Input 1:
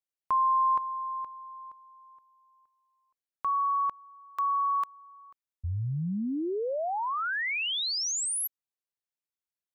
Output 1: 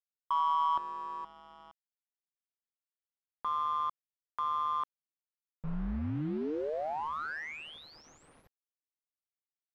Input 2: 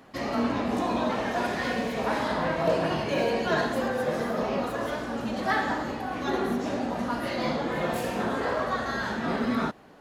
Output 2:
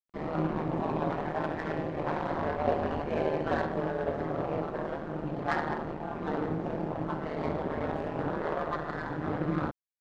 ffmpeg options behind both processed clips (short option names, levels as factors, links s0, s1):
-af "aeval=exprs='val(0)*sin(2*PI*77*n/s)':c=same,acrusher=bits=6:mix=0:aa=0.000001,adynamicsmooth=sensitivity=1:basefreq=1100"